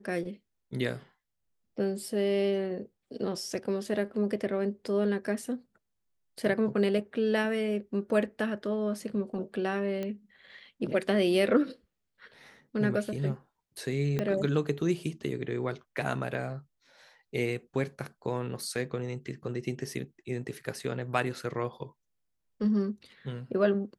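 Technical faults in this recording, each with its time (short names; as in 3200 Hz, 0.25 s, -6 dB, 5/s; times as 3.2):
10.03 pop -22 dBFS
14.19 pop -17 dBFS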